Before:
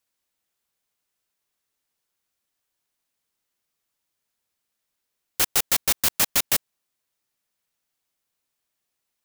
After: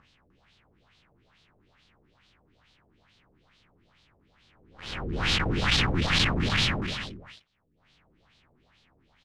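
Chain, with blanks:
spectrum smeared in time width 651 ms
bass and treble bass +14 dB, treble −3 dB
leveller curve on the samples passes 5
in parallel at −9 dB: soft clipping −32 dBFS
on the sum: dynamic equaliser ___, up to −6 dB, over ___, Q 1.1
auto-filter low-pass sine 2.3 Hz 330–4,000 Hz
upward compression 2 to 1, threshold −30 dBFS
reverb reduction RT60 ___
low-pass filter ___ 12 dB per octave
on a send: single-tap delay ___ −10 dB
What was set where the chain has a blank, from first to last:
630 Hz, −44 dBFS, 0.59 s, 10,000 Hz, 302 ms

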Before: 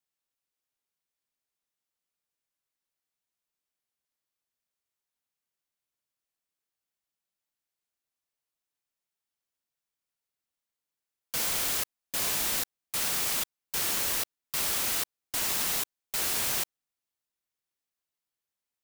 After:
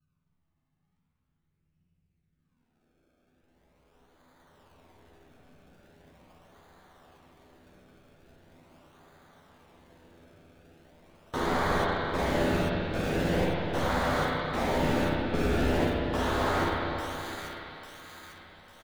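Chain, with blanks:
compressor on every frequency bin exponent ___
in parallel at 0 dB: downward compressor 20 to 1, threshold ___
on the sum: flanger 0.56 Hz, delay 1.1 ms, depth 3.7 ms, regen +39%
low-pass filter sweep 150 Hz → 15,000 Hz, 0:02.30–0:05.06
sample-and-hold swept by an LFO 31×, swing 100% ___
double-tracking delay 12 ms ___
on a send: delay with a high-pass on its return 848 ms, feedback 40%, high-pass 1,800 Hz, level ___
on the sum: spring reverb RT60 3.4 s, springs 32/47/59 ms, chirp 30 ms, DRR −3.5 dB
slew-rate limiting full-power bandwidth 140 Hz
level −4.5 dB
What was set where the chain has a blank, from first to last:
0.6, −38 dBFS, 0.41 Hz, −6.5 dB, −7 dB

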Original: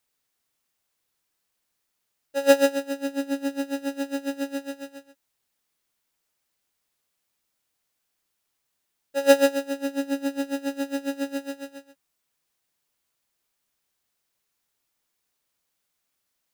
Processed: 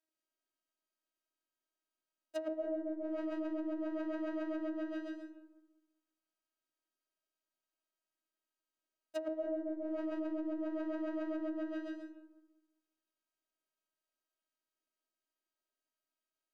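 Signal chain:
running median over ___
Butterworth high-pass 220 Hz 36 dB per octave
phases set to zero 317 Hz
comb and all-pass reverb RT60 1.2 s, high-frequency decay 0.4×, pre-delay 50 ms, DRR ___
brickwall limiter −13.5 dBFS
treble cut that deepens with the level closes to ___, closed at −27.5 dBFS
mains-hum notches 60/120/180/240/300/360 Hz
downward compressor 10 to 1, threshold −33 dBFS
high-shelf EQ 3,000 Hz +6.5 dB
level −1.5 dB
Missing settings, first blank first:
41 samples, 1 dB, 530 Hz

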